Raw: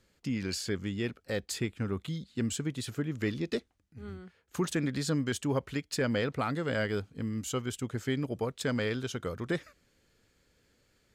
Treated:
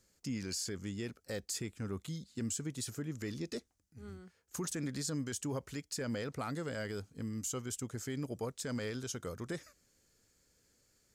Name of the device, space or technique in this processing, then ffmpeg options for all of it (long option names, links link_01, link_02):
over-bright horn tweeter: -af "highshelf=frequency=4500:width_type=q:width=1.5:gain=8.5,alimiter=limit=-23dB:level=0:latency=1:release=26,volume=-5.5dB"